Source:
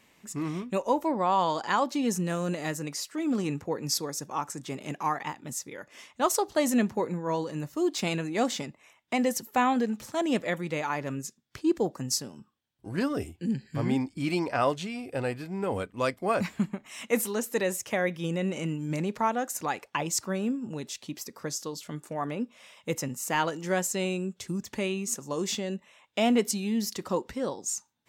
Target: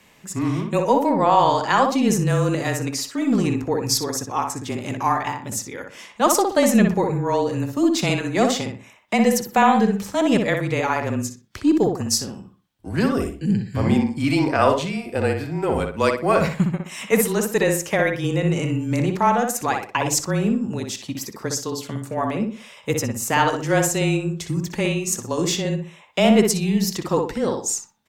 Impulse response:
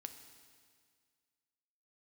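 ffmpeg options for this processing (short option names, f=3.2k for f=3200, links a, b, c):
-filter_complex "[0:a]afreqshift=-24,aeval=exprs='0.266*(cos(1*acos(clip(val(0)/0.266,-1,1)))-cos(1*PI/2))+0.00188*(cos(6*acos(clip(val(0)/0.266,-1,1)))-cos(6*PI/2))':c=same,asplit=2[a][b];[b]adelay=61,lowpass=f=2.5k:p=1,volume=-4dB,asplit=2[c][d];[d]adelay=61,lowpass=f=2.5k:p=1,volume=0.33,asplit=2[e][f];[f]adelay=61,lowpass=f=2.5k:p=1,volume=0.33,asplit=2[g][h];[h]adelay=61,lowpass=f=2.5k:p=1,volume=0.33[i];[a][c][e][g][i]amix=inputs=5:normalize=0,volume=7.5dB"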